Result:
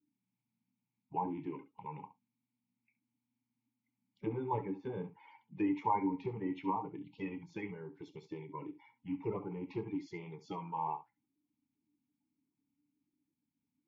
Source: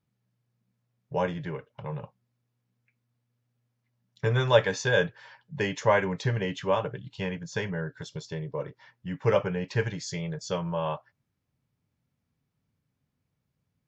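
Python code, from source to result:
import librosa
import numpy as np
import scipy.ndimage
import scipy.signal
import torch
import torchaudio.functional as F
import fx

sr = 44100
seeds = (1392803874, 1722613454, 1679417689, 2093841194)

p1 = fx.spec_quant(x, sr, step_db=30)
p2 = fx.env_lowpass_down(p1, sr, base_hz=1000.0, full_db=-23.5)
p3 = fx.vowel_filter(p2, sr, vowel='u')
p4 = p3 + fx.room_early_taps(p3, sr, ms=(27, 68), db=(-15.0, -14.5), dry=0)
y = p4 * librosa.db_to_amplitude(6.5)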